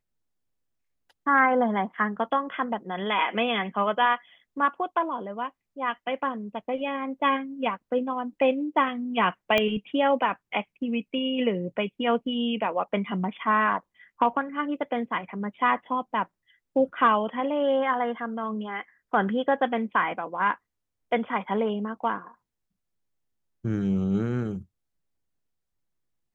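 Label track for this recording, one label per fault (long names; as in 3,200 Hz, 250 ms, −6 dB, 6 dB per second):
9.580000	9.580000	click −10 dBFS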